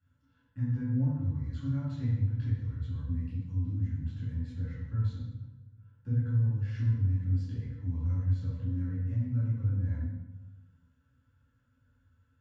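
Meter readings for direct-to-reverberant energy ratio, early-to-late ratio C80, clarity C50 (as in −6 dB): −10.5 dB, 2.0 dB, −1.0 dB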